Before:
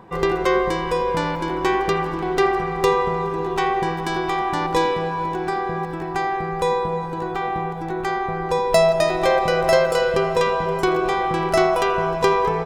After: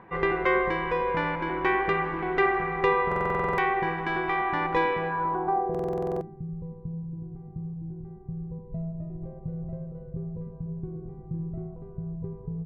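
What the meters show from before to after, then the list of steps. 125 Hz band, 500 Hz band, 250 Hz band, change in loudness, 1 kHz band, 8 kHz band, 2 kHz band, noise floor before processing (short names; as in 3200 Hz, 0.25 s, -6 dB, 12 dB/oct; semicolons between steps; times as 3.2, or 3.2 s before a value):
-3.5 dB, -10.5 dB, -6.5 dB, -7.5 dB, -7.5 dB, under -25 dB, -4.0 dB, -28 dBFS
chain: low-pass sweep 2100 Hz -> 140 Hz, 5.06–6.43; stuck buffer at 3.07/5.7, samples 2048, times 10; gain -6.5 dB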